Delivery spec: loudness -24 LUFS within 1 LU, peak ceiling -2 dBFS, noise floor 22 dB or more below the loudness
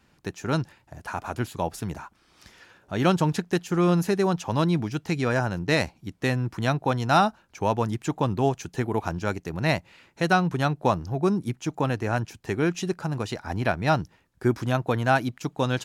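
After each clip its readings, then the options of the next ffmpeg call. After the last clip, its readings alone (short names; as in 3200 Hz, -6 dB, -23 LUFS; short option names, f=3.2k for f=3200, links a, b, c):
loudness -26.0 LUFS; peak -8.0 dBFS; loudness target -24.0 LUFS
-> -af "volume=2dB"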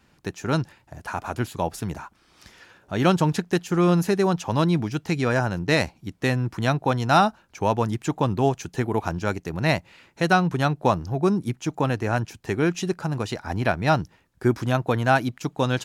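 loudness -24.0 LUFS; peak -6.0 dBFS; noise floor -61 dBFS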